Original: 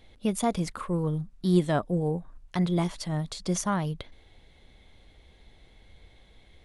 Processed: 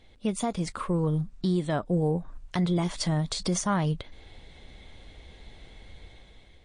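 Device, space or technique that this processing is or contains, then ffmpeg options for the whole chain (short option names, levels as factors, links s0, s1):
low-bitrate web radio: -af "dynaudnorm=f=340:g=5:m=2.66,alimiter=limit=0.158:level=0:latency=1:release=211,volume=0.891" -ar 22050 -c:a libmp3lame -b:a 40k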